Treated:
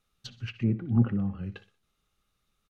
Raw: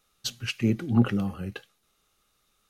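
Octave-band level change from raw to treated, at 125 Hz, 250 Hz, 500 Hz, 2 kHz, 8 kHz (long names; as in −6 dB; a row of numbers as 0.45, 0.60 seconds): 0.0 dB, −3.0 dB, −7.0 dB, −9.0 dB, can't be measured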